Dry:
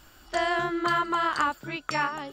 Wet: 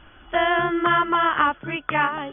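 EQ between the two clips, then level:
linear-phase brick-wall low-pass 3,500 Hz
+6.0 dB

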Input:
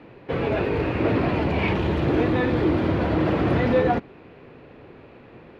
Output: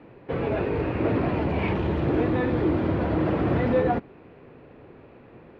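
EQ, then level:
high-shelf EQ 3,000 Hz −10 dB
−2.0 dB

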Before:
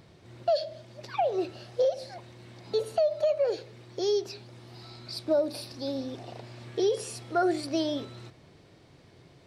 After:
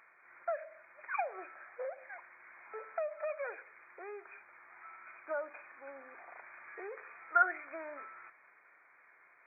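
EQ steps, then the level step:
high-pass with resonance 1,400 Hz, resonance Q 2.2
linear-phase brick-wall low-pass 2,500 Hz
0.0 dB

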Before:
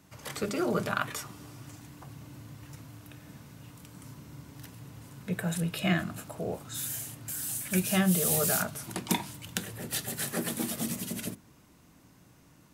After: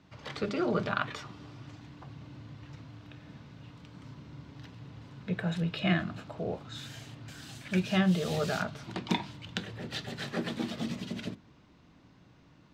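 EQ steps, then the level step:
high-frequency loss of the air 190 metres
parametric band 3,900 Hz +5.5 dB 0.94 octaves
0.0 dB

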